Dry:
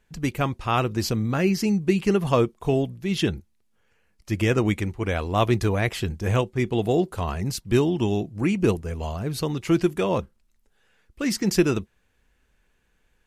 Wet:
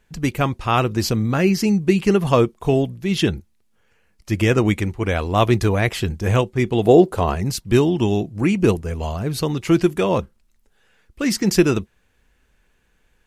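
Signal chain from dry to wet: 6.85–7.35 s: peaking EQ 470 Hz +7 dB 2.1 oct; trim +4.5 dB

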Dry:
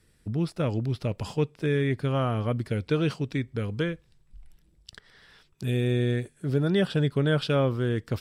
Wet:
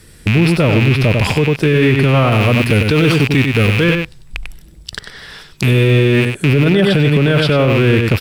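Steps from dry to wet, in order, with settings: rattle on loud lows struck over -41 dBFS, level -24 dBFS; treble shelf 5.1 kHz +4 dB, from 2.32 s +10.5 dB, from 3.84 s +3.5 dB; delay 96 ms -8 dB; dynamic bell 7 kHz, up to -7 dB, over -50 dBFS, Q 1; loudness maximiser +23 dB; trim -3 dB

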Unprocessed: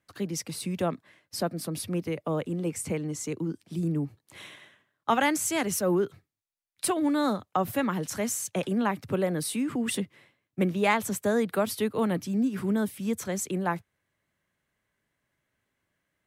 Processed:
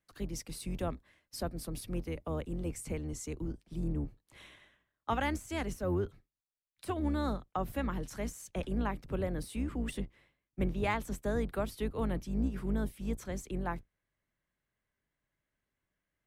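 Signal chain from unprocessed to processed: octave divider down 2 oct, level +1 dB; de-esser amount 60%; treble shelf 5.3 kHz +2.5 dB, from 3.52 s -4 dB; trim -8.5 dB

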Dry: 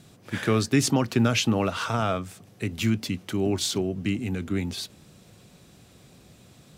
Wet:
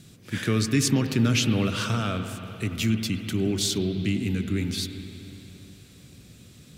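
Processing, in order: peaking EQ 790 Hz -12.5 dB 1.5 oct; in parallel at -2 dB: peak limiter -22.5 dBFS, peak gain reduction 10.5 dB; on the sum: reverberation RT60 3.4 s, pre-delay 81 ms, DRR 7 dB; trim -1.5 dB

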